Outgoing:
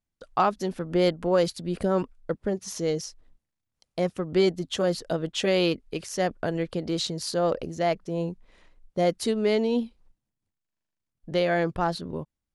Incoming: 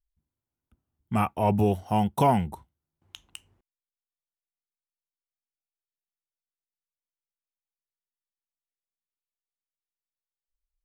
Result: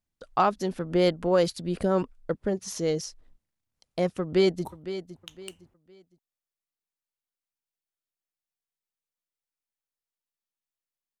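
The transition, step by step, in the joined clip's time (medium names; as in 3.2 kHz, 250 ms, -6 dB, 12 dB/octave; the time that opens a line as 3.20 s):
outgoing
4.21–4.65 s: echo throw 510 ms, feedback 30%, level -12.5 dB
4.65 s: go over to incoming from 2.52 s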